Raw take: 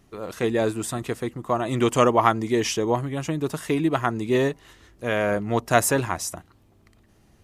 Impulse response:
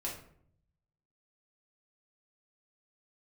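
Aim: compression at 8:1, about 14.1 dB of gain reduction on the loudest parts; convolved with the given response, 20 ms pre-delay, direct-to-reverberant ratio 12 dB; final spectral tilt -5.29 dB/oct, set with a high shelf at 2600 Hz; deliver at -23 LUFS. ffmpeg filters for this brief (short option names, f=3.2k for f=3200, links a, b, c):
-filter_complex "[0:a]highshelf=f=2.6k:g=-4,acompressor=threshold=-28dB:ratio=8,asplit=2[a][b];[1:a]atrim=start_sample=2205,adelay=20[c];[b][c]afir=irnorm=-1:irlink=0,volume=-13.5dB[d];[a][d]amix=inputs=2:normalize=0,volume=10dB"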